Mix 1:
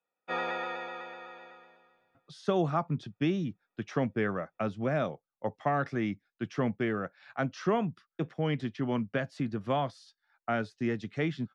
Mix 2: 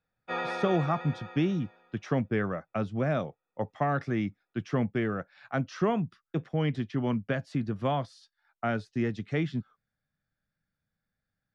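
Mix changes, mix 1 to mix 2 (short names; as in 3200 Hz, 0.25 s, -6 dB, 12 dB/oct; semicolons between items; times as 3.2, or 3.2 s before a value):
speech: entry -1.85 s; master: add low shelf 120 Hz +9 dB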